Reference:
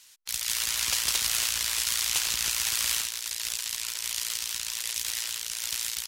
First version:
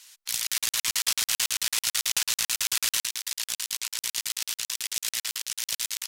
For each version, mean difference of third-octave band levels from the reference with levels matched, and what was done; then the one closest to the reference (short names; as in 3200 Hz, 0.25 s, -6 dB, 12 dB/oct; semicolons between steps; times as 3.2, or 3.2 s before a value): 3.0 dB: overdrive pedal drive 8 dB, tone 2900 Hz, clips at -8.5 dBFS; high shelf 6300 Hz +12 dB; crackling interface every 0.11 s, samples 2048, zero, from 0.47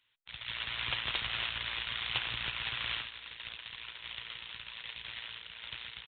16.5 dB: downsampling 8000 Hz; bell 120 Hz +10.5 dB 0.38 oct; echo 0.317 s -15 dB; upward expander 1.5:1, over -56 dBFS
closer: first